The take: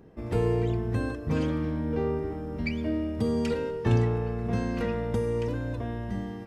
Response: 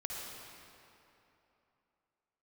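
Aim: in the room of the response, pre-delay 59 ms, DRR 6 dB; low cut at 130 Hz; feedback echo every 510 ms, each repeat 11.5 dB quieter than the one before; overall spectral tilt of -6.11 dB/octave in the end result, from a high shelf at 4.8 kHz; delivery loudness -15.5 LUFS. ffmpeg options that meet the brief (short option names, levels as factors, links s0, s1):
-filter_complex "[0:a]highpass=130,highshelf=f=4800:g=5.5,aecho=1:1:510|1020|1530:0.266|0.0718|0.0194,asplit=2[s0][s1];[1:a]atrim=start_sample=2205,adelay=59[s2];[s1][s2]afir=irnorm=-1:irlink=0,volume=0.422[s3];[s0][s3]amix=inputs=2:normalize=0,volume=4.73"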